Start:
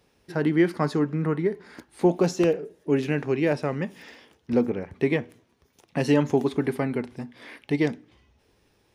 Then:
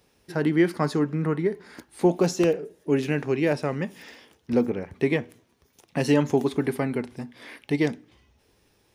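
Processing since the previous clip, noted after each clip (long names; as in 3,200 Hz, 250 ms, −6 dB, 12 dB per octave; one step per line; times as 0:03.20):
high-shelf EQ 6,200 Hz +6.5 dB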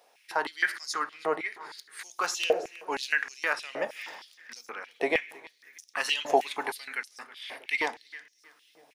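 repeating echo 320 ms, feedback 39%, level −19 dB
on a send at −16 dB: convolution reverb RT60 2.3 s, pre-delay 3 ms
on the sum: high-pass on a step sequencer 6.4 Hz 670–5,700 Hz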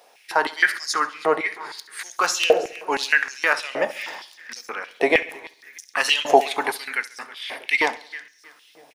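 repeating echo 68 ms, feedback 48%, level −18.5 dB
level +8.5 dB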